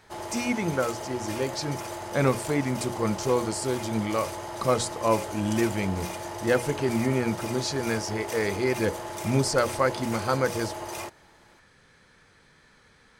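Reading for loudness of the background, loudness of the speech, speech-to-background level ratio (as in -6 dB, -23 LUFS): -35.5 LUFS, -28.0 LUFS, 7.5 dB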